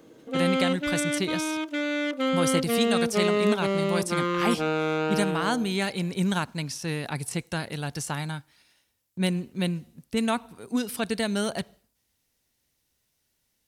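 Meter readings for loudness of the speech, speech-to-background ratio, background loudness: -29.5 LUFS, -2.5 dB, -27.0 LUFS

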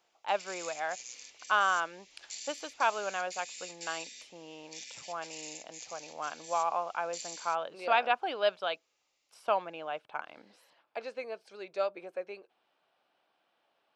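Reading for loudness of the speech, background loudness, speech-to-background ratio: -34.0 LUFS, -45.0 LUFS, 11.0 dB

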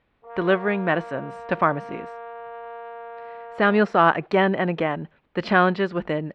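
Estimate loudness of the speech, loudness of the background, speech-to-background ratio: -22.0 LUFS, -38.5 LUFS, 16.5 dB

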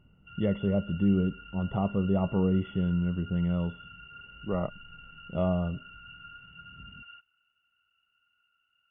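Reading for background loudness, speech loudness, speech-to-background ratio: -47.5 LUFS, -29.5 LUFS, 18.0 dB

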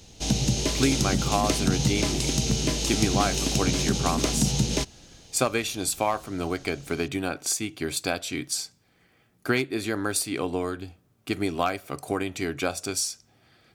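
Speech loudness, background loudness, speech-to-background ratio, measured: -28.5 LUFS, -25.5 LUFS, -3.0 dB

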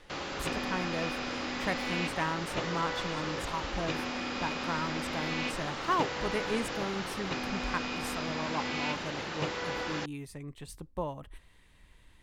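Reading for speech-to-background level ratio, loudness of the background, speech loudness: -2.5 dB, -35.0 LUFS, -37.5 LUFS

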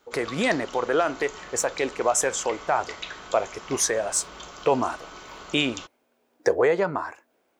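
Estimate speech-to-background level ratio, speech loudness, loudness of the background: 14.5 dB, -25.5 LUFS, -40.0 LUFS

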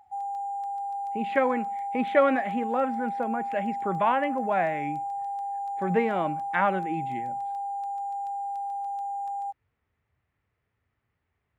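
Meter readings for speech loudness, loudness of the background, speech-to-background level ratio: -28.0 LUFS, -32.5 LUFS, 4.5 dB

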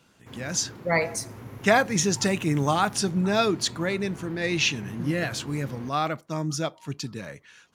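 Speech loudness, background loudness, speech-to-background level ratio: -26.0 LUFS, -42.5 LUFS, 16.5 dB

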